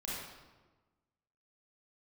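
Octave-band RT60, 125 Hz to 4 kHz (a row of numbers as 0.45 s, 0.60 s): 1.5 s, 1.5 s, 1.3 s, 1.2 s, 1.0 s, 0.85 s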